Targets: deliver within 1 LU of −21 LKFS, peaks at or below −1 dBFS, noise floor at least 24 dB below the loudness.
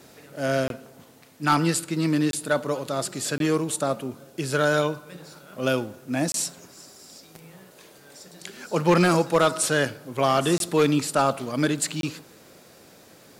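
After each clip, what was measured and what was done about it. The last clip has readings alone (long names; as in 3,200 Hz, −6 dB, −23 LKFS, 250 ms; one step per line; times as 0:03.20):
share of clipped samples 0.3%; peaks flattened at −12.0 dBFS; number of dropouts 6; longest dropout 22 ms; integrated loudness −24.0 LKFS; sample peak −12.0 dBFS; target loudness −21.0 LKFS
→ clipped peaks rebuilt −12 dBFS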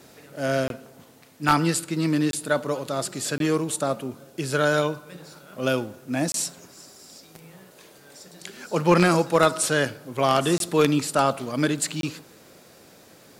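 share of clipped samples 0.0%; number of dropouts 6; longest dropout 22 ms
→ repair the gap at 0:00.68/0:02.31/0:03.38/0:06.32/0:10.58/0:12.01, 22 ms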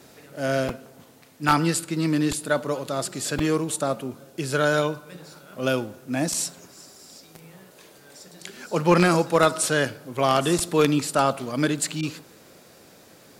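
number of dropouts 0; integrated loudness −24.0 LKFS; sample peak −3.0 dBFS; target loudness −21.0 LKFS
→ level +3 dB
brickwall limiter −1 dBFS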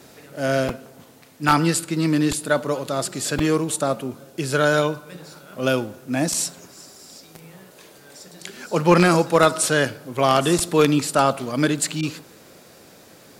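integrated loudness −21.0 LKFS; sample peak −1.0 dBFS; background noise floor −49 dBFS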